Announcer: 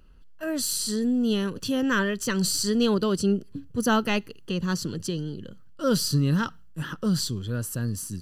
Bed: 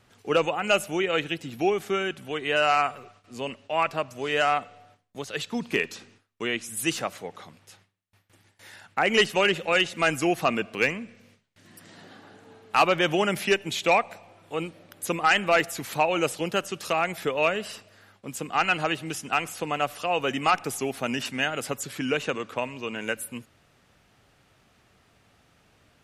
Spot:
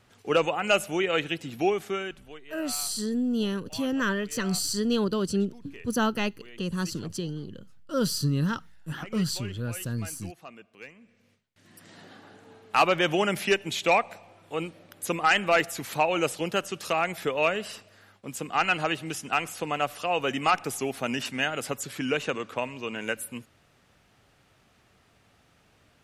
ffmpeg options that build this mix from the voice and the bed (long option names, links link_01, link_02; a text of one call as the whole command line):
ffmpeg -i stem1.wav -i stem2.wav -filter_complex "[0:a]adelay=2100,volume=-3dB[link_01];[1:a]volume=20dB,afade=type=out:start_time=1.64:duration=0.81:silence=0.0891251,afade=type=in:start_time=10.95:duration=1.01:silence=0.0944061[link_02];[link_01][link_02]amix=inputs=2:normalize=0" out.wav